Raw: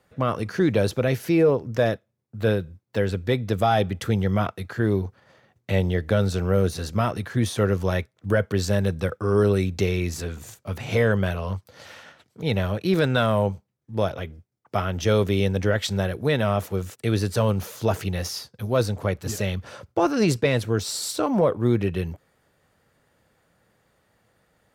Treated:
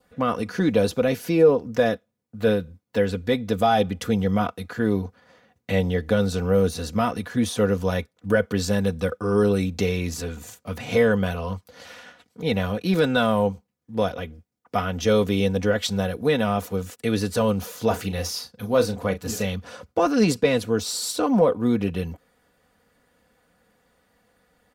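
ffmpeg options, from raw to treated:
-filter_complex "[0:a]asettb=1/sr,asplit=3[a][b][c];[a]atrim=end=17.874[d];[b]atrim=start=17.87:end=19.46,asetpts=PTS-STARTPTS,afade=t=in:d=0.004:c=qsin,afade=t=out:st=1.586:d=0.004:c=qsin,asplit=2[e][f];[f]adelay=36,volume=-10.5dB[g];[e][g]amix=inputs=2:normalize=0,atrim=end_sample=70119[h];[c]atrim=start=19.456[i];[d][h]acrossfade=d=0.004:c1=hsin:c2=qsin[j];[j][i]acrossfade=d=0.004:c1=qsin:c2=hsin,aecho=1:1:4.1:0.61,adynamicequalizer=threshold=0.00501:dfrequency=1900:dqfactor=2.6:tfrequency=1900:tqfactor=2.6:attack=5:release=100:ratio=0.375:range=2.5:mode=cutabove:tftype=bell"

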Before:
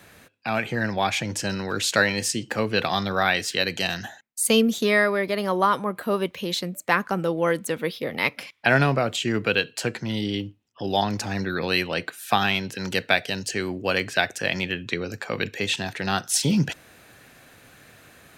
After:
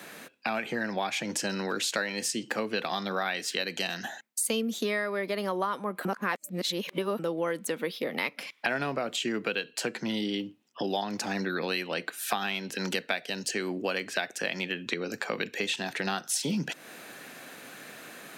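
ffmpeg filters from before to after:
-filter_complex "[0:a]asplit=3[a][b][c];[a]atrim=end=6.052[d];[b]atrim=start=6.048:end=7.192,asetpts=PTS-STARTPTS,areverse[e];[c]atrim=start=7.188[f];[d][e]acrossfade=d=0.004:c1=hsin:c2=hsin[g];[g][f]acrossfade=d=0.004:c1=hsin:c2=hsin,highpass=f=180:w=0.5412,highpass=f=180:w=1.3066,acompressor=threshold=-35dB:ratio=4,volume=5.5dB"

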